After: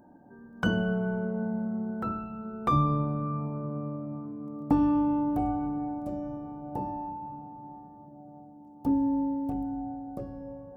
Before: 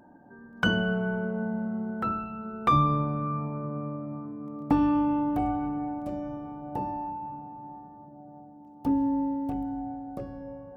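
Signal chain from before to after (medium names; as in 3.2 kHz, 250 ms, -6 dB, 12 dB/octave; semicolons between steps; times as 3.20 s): peaking EQ 2.5 kHz -8.5 dB 2.1 oct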